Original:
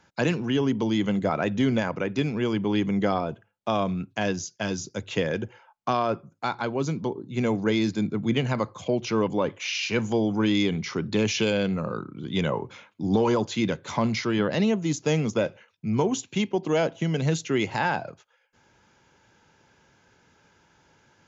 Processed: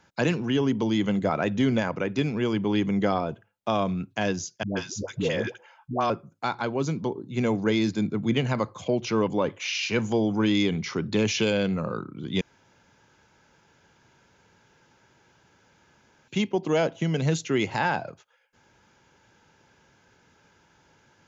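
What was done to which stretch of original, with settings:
0:04.63–0:06.10: all-pass dispersion highs, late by 136 ms, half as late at 480 Hz
0:12.41–0:16.28: fill with room tone

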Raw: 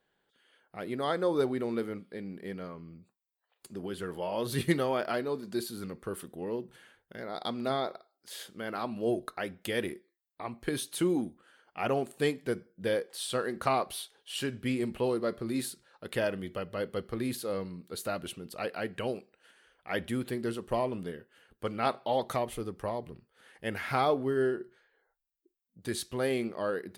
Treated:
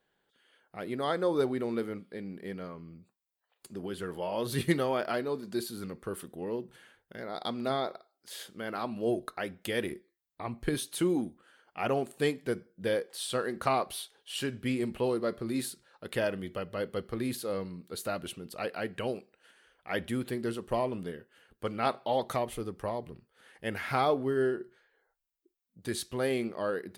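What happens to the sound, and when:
0:09.91–0:10.75: low-shelf EQ 140 Hz +11 dB

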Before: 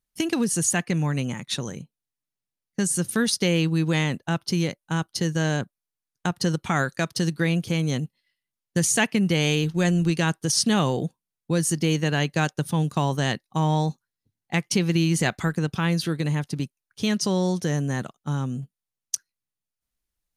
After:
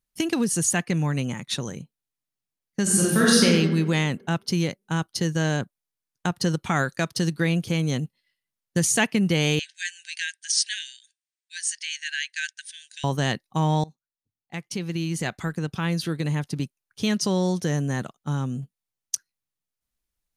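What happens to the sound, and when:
0:02.82–0:03.44: thrown reverb, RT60 1.3 s, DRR −6 dB
0:09.59–0:13.04: linear-phase brick-wall band-pass 1,500–9,700 Hz
0:13.84–0:16.60: fade in, from −22 dB

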